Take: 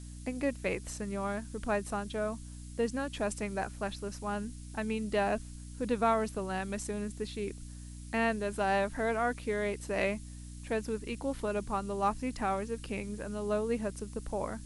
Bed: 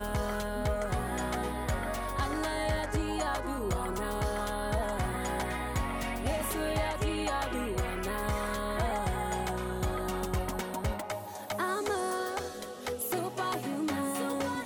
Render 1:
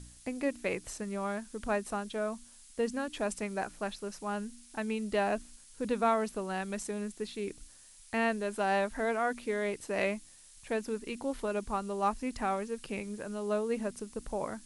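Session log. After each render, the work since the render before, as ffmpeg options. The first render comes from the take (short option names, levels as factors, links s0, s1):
-af "bandreject=f=60:t=h:w=4,bandreject=f=120:t=h:w=4,bandreject=f=180:t=h:w=4,bandreject=f=240:t=h:w=4,bandreject=f=300:t=h:w=4"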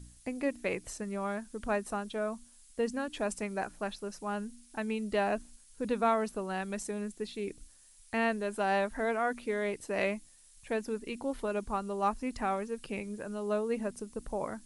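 -af "afftdn=nr=6:nf=-56"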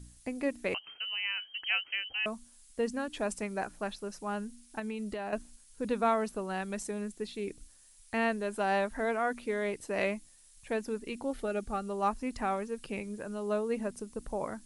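-filter_complex "[0:a]asettb=1/sr,asplit=3[s0][s1][s2];[s0]atrim=end=0.744[s3];[s1]atrim=start=0.74:end=2.26,asetpts=PTS-STARTPTS,afade=t=in:d=0.004:c=qsin,afade=t=out:st=1.516:d=0.004:c=qsin,lowpass=f=2700:t=q:w=0.5098,lowpass=f=2700:t=q:w=0.6013,lowpass=f=2700:t=q:w=0.9,lowpass=f=2700:t=q:w=2.563,afreqshift=-3200[s4];[s2]atrim=start=2.256[s5];[s3][s4]acrossfade=d=0.004:c1=hsin:c2=qsin[s6];[s6][s5]acrossfade=d=0.004:c1=qsin:c2=hsin,asettb=1/sr,asplit=3[s7][s8][s9];[s7]atrim=end=4.794[s10];[s8]atrim=start=4.79:end=5.33,asetpts=PTS-STARTPTS,afade=t=in:d=0.004:c=qsin,afade=t=out:st=0.536:d=0.004:c=qsin,acompressor=threshold=0.0224:ratio=12:attack=3.2:release=140:knee=1:detection=peak[s11];[s9]atrim=start=5.326[s12];[s10][s11]acrossfade=d=0.004:c1=hsin:c2=qsin[s13];[s13][s12]acrossfade=d=0.004:c1=qsin:c2=hsin,asettb=1/sr,asplit=3[s14][s15][s16];[s14]atrim=end=11.314[s17];[s15]atrim=start=11.31:end=11.88,asetpts=PTS-STARTPTS,afade=t=in:d=0.004:c=qsin,afade=t=out:st=0.566:d=0.004:c=qsin,asuperstop=centerf=1000:order=4:qfactor=4.1[s18];[s16]atrim=start=11.876[s19];[s17][s18]acrossfade=d=0.004:c1=hsin:c2=qsin[s20];[s20][s19]acrossfade=d=0.004:c1=qsin:c2=hsin"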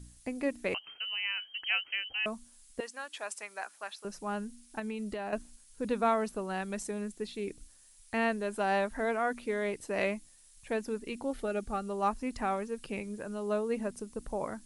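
-filter_complex "[0:a]asettb=1/sr,asplit=3[s0][s1][s2];[s0]atrim=end=2.804[s3];[s1]atrim=start=2.8:end=4.05,asetpts=PTS-STARTPTS,afade=t=in:d=0.004:c=qsin,afade=t=out:st=1.246:d=0.004:c=qsin,highpass=930[s4];[s2]atrim=start=4.046[s5];[s3][s4]acrossfade=d=0.004:c1=hsin:c2=qsin[s6];[s6][s5]acrossfade=d=0.004:c1=qsin:c2=hsin"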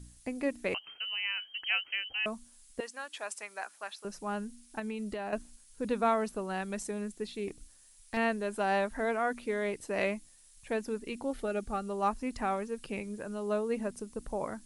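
-filter_complex "[0:a]asettb=1/sr,asplit=3[s0][s1][s2];[s0]atrim=end=7.484[s3];[s1]atrim=start=7.48:end=8.17,asetpts=PTS-STARTPTS,afade=t=in:d=0.004:c=qsin,afade=t=out:st=0.686:d=0.004:c=qsin,aeval=exprs='clip(val(0),-1,0.0126)':c=same[s4];[s2]atrim=start=8.166[s5];[s3][s4]acrossfade=d=0.004:c1=hsin:c2=qsin[s6];[s6][s5]acrossfade=d=0.004:c1=qsin:c2=hsin"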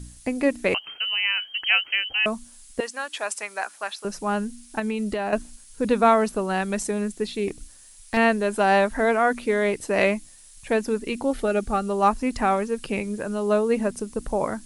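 -af "volume=3.35"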